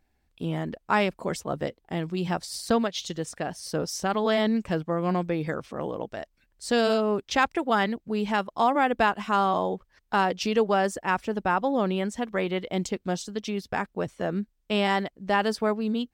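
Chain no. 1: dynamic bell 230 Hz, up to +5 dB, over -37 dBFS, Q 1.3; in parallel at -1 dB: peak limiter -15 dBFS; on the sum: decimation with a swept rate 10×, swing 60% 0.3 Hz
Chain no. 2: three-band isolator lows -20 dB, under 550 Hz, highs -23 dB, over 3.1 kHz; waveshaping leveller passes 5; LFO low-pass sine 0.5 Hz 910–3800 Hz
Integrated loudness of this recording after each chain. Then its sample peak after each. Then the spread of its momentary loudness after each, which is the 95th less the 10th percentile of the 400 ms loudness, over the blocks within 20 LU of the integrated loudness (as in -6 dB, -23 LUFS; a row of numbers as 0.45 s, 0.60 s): -20.5 LUFS, -16.5 LUFS; -4.5 dBFS, -3.0 dBFS; 9 LU, 10 LU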